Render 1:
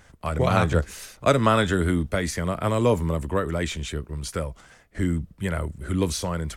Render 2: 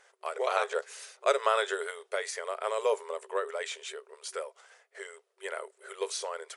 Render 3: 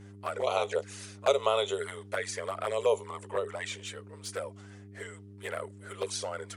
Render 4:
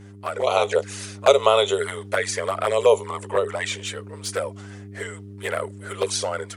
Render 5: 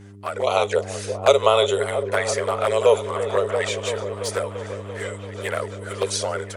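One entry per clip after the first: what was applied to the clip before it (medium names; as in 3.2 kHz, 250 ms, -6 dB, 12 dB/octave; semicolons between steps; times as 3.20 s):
FFT band-pass 380–11000 Hz; trim -5.5 dB
touch-sensitive flanger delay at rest 10.9 ms, full sweep at -26.5 dBFS; mains buzz 100 Hz, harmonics 4, -52 dBFS -5 dB/octave; trim +3 dB
level rider gain up to 4.5 dB; trim +5.5 dB
delay with an opening low-pass 339 ms, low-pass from 400 Hz, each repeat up 1 oct, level -6 dB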